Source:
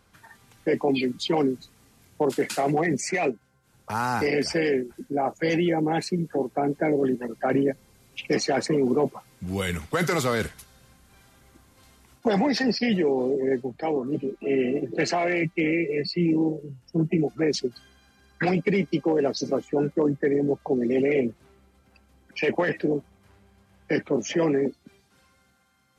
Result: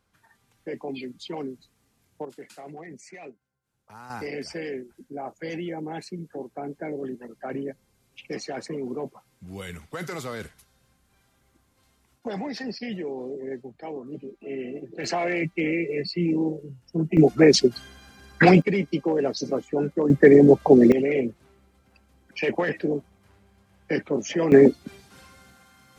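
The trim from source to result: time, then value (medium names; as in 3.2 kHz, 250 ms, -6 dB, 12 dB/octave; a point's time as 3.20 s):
-10.5 dB
from 2.25 s -18 dB
from 4.10 s -9.5 dB
from 15.04 s -1.5 dB
from 17.17 s +9 dB
from 18.62 s -1 dB
from 20.10 s +10.5 dB
from 20.92 s -1 dB
from 24.52 s +11 dB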